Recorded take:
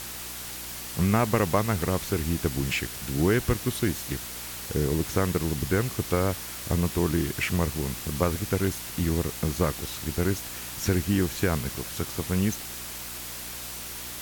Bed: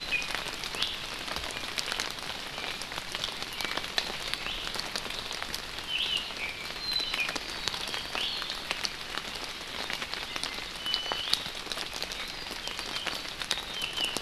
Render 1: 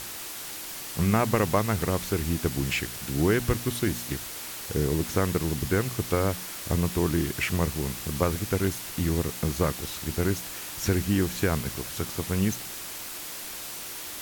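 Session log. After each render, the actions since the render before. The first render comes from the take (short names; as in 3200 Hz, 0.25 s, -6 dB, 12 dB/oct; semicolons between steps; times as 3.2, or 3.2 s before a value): de-hum 60 Hz, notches 4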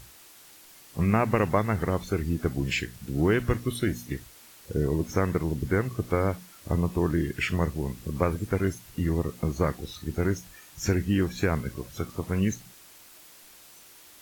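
noise print and reduce 14 dB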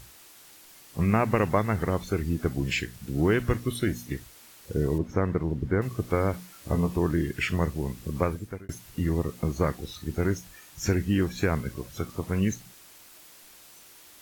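4.98–5.82 LPF 1400 Hz 6 dB/oct; 6.32–6.97 doubler 16 ms -5 dB; 8.19–8.69 fade out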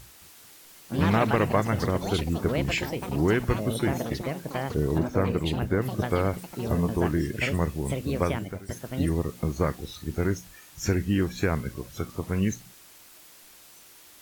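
echoes that change speed 0.22 s, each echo +6 st, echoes 3, each echo -6 dB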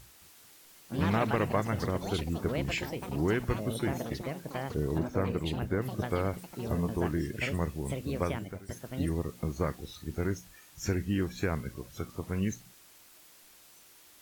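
gain -5.5 dB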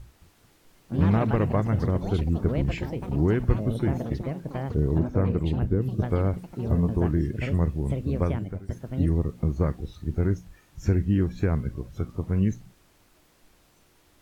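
5.69–6 spectral gain 500–2400 Hz -9 dB; tilt -3 dB/oct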